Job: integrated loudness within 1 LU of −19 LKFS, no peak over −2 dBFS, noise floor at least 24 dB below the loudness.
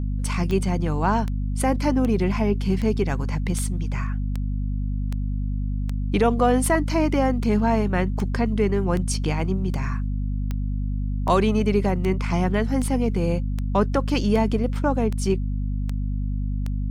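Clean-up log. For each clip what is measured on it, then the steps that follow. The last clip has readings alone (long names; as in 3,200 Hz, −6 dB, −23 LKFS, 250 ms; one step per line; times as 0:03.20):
number of clicks 22; mains hum 50 Hz; hum harmonics up to 250 Hz; level of the hum −22 dBFS; integrated loudness −24.0 LKFS; sample peak −8.0 dBFS; target loudness −19.0 LKFS
→ click removal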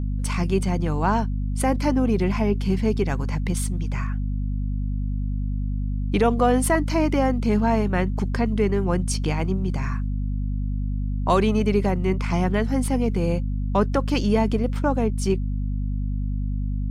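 number of clicks 0; mains hum 50 Hz; hum harmonics up to 250 Hz; level of the hum −22 dBFS
→ mains-hum notches 50/100/150/200/250 Hz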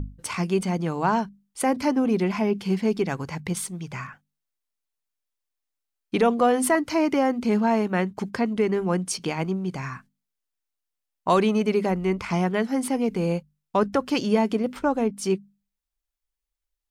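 mains hum none found; integrated loudness −24.5 LKFS; sample peak −9.5 dBFS; target loudness −19.0 LKFS
→ level +5.5 dB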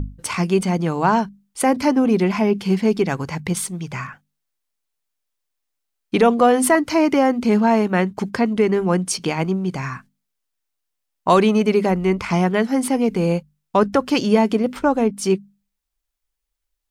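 integrated loudness −19.0 LKFS; sample peak −4.0 dBFS; background noise floor −78 dBFS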